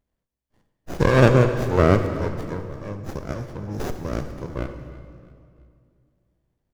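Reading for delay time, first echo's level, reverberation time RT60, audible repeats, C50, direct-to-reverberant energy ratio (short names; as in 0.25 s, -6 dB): 0.331 s, -19.5 dB, 2.3 s, 3, 8.0 dB, 7.0 dB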